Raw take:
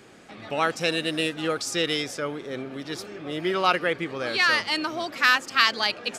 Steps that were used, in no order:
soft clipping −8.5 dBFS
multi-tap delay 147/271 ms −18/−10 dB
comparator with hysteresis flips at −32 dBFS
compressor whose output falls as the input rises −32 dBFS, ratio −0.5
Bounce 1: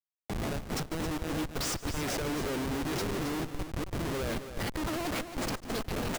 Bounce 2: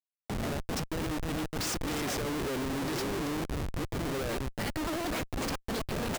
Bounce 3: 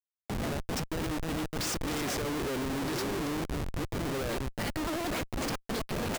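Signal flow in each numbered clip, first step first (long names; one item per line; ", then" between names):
soft clipping, then compressor whose output falls as the input rises, then comparator with hysteresis, then multi-tap delay
soft clipping, then compressor whose output falls as the input rises, then multi-tap delay, then comparator with hysteresis
compressor whose output falls as the input rises, then soft clipping, then multi-tap delay, then comparator with hysteresis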